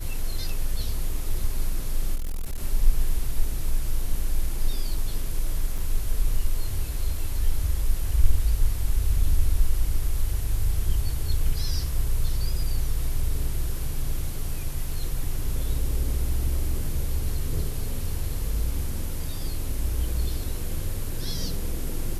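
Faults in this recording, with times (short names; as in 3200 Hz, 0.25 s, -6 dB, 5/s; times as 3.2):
2.15–2.58 clipped -24.5 dBFS
5.78 gap 4.2 ms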